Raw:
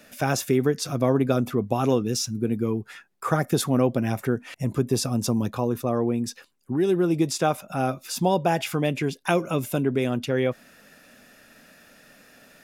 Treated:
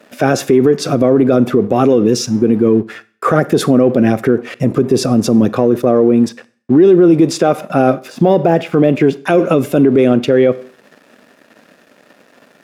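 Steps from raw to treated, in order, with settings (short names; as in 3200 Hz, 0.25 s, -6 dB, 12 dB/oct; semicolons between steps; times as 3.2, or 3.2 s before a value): 6.28–7.07 LPF 4500 Hz -> 8200 Hz; 8.08–9.19 de-esser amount 100%; in parallel at -5.5 dB: soft clip -19 dBFS, distortion -11 dB; on the sum: bell 910 Hz -9.5 dB 0.54 oct; crossover distortion -48.5 dBFS; HPF 410 Hz 12 dB/oct; tilt -4.5 dB/oct; Schroeder reverb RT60 0.47 s, combs from 32 ms, DRR 19 dB; maximiser +16 dB; gain -1 dB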